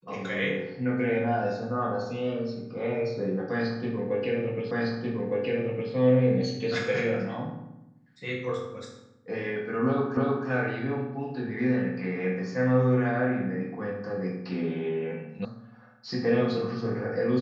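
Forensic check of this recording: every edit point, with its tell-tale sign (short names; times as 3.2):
4.71 repeat of the last 1.21 s
10.17 repeat of the last 0.31 s
15.45 sound cut off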